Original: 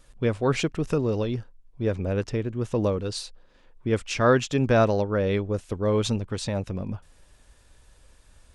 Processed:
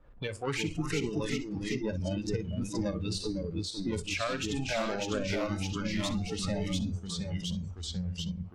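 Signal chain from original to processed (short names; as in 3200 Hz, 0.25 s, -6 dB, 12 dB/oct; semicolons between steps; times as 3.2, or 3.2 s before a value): added harmonics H 5 -29 dB, 8 -31 dB, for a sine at -8 dBFS; soft clip -20 dBFS, distortion -12 dB; 5.44–6.19 brick-wall FIR band-stop 350–1600 Hz; low-pass opened by the level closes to 1200 Hz, open at -26 dBFS; tremolo saw up 11 Hz, depth 55%; tape echo 61 ms, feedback 43%, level -10 dB, low-pass 4100 Hz; limiter -24.5 dBFS, peak gain reduction 5.5 dB; echoes that change speed 0.334 s, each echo -1 st, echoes 3; FDN reverb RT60 1.1 s, high-frequency decay 0.95×, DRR 18.5 dB; spectral noise reduction 20 dB; three-band squash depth 70%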